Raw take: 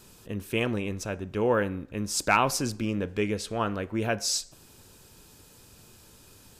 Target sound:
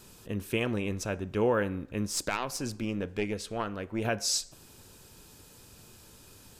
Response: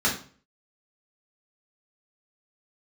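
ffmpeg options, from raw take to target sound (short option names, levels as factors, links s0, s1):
-filter_complex "[0:a]asettb=1/sr,asplit=3[s0][s1][s2];[s0]atrim=end=2.074[s3];[s1]atrim=start=2.07:end=4.05,asetpts=PTS-STARTPTS,afade=t=in:d=0.004:c=qsin,afade=t=out:st=1.976:d=0.004:c=qsin,aeval=exprs='0.335*(cos(1*acos(clip(val(0)/0.335,-1,1)))-cos(1*PI/2))+0.0841*(cos(2*acos(clip(val(0)/0.335,-1,1)))-cos(2*PI/2))+0.0376*(cos(3*acos(clip(val(0)/0.335,-1,1)))-cos(3*PI/2))':c=same[s4];[s2]atrim=start=4.046[s5];[s3][s4]acrossfade=d=0.004:c1=hsin:c2=qsin[s6];[s6][s5]acrossfade=d=0.004:c1=qsin:c2=hsin,alimiter=limit=0.15:level=0:latency=1:release=338"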